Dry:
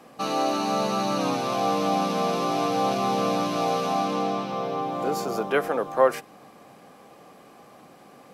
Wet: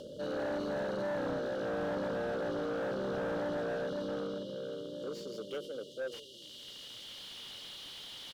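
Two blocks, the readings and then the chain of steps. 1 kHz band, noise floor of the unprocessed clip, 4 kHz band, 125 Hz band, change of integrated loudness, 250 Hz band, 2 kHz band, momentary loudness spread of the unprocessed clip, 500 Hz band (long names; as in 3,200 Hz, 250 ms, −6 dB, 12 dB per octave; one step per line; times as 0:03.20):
−19.5 dB, −51 dBFS, −9.0 dB, −11.0 dB, −12.5 dB, −11.0 dB, −8.5 dB, 5 LU, −9.0 dB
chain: on a send: echo with shifted repeats 86 ms, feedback 62%, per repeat −44 Hz, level −17.5 dB
on the sum: background noise pink −46 dBFS
in parallel at +1 dB: upward compression, threshold −27 dBFS
on the sum: linear-phase brick-wall band-stop 610–2,800 Hz
band-pass filter sweep 640 Hz → 3,000 Hz, 0:03.71–0:07.28
soft clipping −29.5 dBFS, distortion −10 dB
graphic EQ with 10 bands 125 Hz +6 dB, 500 Hz −6 dB, 1,000 Hz +8 dB, 4,000 Hz +4 dB
slew-rate limiting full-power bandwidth 17 Hz
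level +1 dB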